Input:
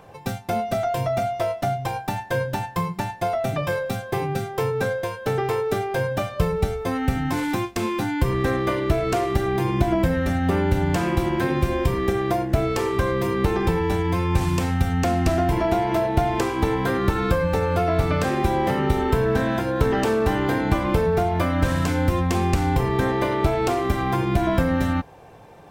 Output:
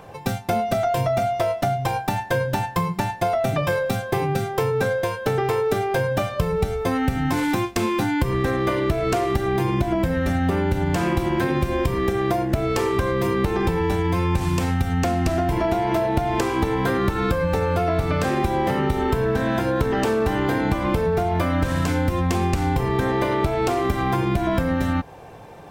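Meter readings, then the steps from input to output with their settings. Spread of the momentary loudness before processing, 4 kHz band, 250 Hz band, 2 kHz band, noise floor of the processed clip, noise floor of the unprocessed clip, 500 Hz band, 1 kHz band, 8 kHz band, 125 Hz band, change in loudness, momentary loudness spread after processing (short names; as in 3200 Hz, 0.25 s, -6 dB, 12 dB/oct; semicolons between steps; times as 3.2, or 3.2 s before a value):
5 LU, +1.0 dB, +0.5 dB, +1.0 dB, -35 dBFS, -40 dBFS, +0.5 dB, +1.0 dB, +1.0 dB, 0.0 dB, +0.5 dB, 2 LU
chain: compressor, threshold -22 dBFS, peak gain reduction 9 dB; gain +4.5 dB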